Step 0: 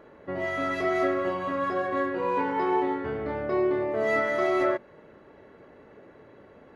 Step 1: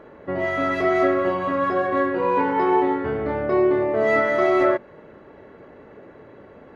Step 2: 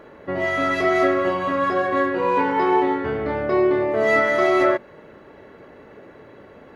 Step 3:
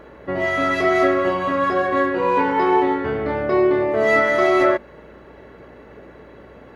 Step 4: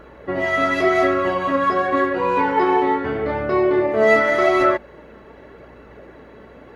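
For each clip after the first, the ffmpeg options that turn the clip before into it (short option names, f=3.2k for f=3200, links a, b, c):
-af "highshelf=f=4.3k:g=-8.5,volume=6.5dB"
-af "highshelf=f=2.7k:g=9"
-af "aeval=exprs='val(0)+0.00224*(sin(2*PI*60*n/s)+sin(2*PI*2*60*n/s)/2+sin(2*PI*3*60*n/s)/3+sin(2*PI*4*60*n/s)/4+sin(2*PI*5*60*n/s)/5)':c=same,volume=1.5dB"
-af "flanger=delay=0.7:depth=3.9:regen=65:speed=0.86:shape=sinusoidal,volume=4.5dB"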